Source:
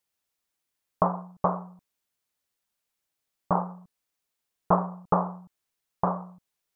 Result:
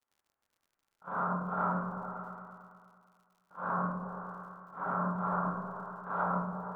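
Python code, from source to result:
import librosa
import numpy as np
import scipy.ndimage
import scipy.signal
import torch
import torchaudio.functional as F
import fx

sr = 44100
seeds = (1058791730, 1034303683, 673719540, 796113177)

p1 = scipy.signal.sosfilt(scipy.signal.butter(4, 1200.0, 'lowpass', fs=sr, output='sos'), x)
p2 = fx.low_shelf(p1, sr, hz=480.0, db=-11.5)
p3 = fx.level_steps(p2, sr, step_db=14)
p4 = fx.transient(p3, sr, attack_db=9, sustain_db=5)
p5 = fx.over_compress(p4, sr, threshold_db=-46.0, ratio=-1.0)
p6 = fx.rev_schroeder(p5, sr, rt60_s=0.63, comb_ms=28, drr_db=-9.0)
p7 = fx.formant_shift(p6, sr, semitones=4)
p8 = p7 + fx.echo_opening(p7, sr, ms=111, hz=200, octaves=1, feedback_pct=70, wet_db=-3, dry=0)
y = fx.dmg_crackle(p8, sr, seeds[0], per_s=100.0, level_db=-59.0)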